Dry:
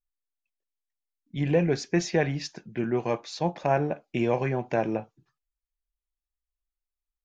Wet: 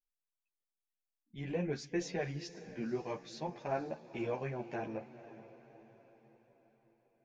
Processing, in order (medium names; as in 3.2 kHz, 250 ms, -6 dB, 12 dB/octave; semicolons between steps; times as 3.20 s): wow and flutter 19 cents; echo that smears into a reverb 498 ms, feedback 50%, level -15 dB; three-phase chorus; trim -8.5 dB